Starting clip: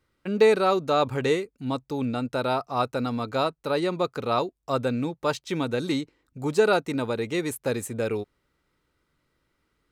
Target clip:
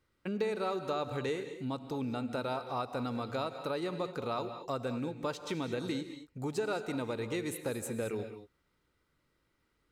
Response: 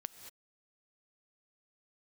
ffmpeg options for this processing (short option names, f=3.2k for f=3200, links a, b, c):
-filter_complex "[0:a]acompressor=threshold=-30dB:ratio=3[a];[1:a]atrim=start_sample=2205,afade=t=out:st=0.28:d=0.01,atrim=end_sample=12789[b];[a][b]afir=irnorm=-1:irlink=0"